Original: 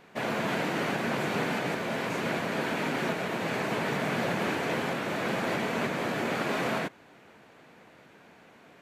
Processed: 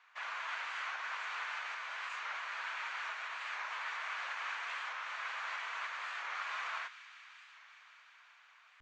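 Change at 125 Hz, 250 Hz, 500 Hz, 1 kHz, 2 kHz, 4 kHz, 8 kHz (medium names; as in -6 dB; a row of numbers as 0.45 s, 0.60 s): under -40 dB, under -40 dB, -27.5 dB, -8.5 dB, -6.0 dB, -8.0 dB, -12.5 dB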